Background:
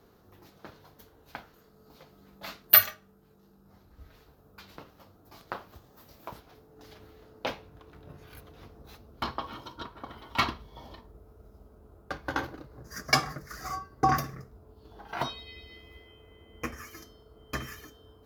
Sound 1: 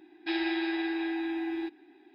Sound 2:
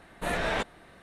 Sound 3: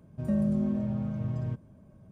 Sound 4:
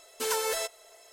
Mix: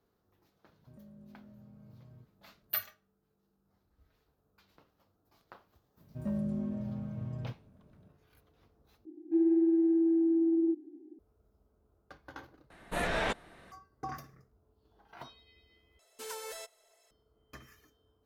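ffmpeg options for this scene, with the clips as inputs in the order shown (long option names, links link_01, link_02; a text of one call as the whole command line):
ffmpeg -i bed.wav -i cue0.wav -i cue1.wav -i cue2.wav -i cue3.wav -filter_complex "[3:a]asplit=2[link_01][link_02];[0:a]volume=-16.5dB[link_03];[link_01]acompressor=threshold=-34dB:ratio=6:attack=3.2:release=140:knee=1:detection=peak[link_04];[1:a]lowpass=frequency=310:width_type=q:width=3.5[link_05];[link_03]asplit=4[link_06][link_07][link_08][link_09];[link_06]atrim=end=9.054[link_10];[link_05]atrim=end=2.14,asetpts=PTS-STARTPTS,volume=-3.5dB[link_11];[link_07]atrim=start=11.186:end=12.704[link_12];[2:a]atrim=end=1.02,asetpts=PTS-STARTPTS,volume=-2.5dB[link_13];[link_08]atrim=start=13.716:end=15.994[link_14];[4:a]atrim=end=1.12,asetpts=PTS-STARTPTS,volume=-13dB[link_15];[link_09]atrim=start=17.106[link_16];[link_04]atrim=end=2.11,asetpts=PTS-STARTPTS,volume=-17.5dB,afade=type=in:duration=0.004:curve=hsin,afade=type=out:start_time=2.106:duration=0.004:curve=hsin,adelay=690[link_17];[link_02]atrim=end=2.11,asetpts=PTS-STARTPTS,volume=-7dB,afade=type=in:duration=0.004:curve=hsin,afade=type=out:start_time=2.106:duration=0.004:curve=hsin,adelay=5970[link_18];[link_10][link_11]acrossfade=duration=0.004:curve1=hsin:curve2=hsin[link_19];[link_19][link_12]acrossfade=duration=0.004:curve1=hsin:curve2=hsin[link_20];[link_20][link_13]acrossfade=duration=0.004:curve1=hsin:curve2=hsin[link_21];[link_21][link_14]acrossfade=duration=0.004:curve1=hsin:curve2=hsin[link_22];[link_22][link_15]acrossfade=duration=0.004:curve1=hsin:curve2=hsin[link_23];[link_23][link_16]acrossfade=duration=0.004:curve1=hsin:curve2=hsin[link_24];[link_24][link_17][link_18]amix=inputs=3:normalize=0" out.wav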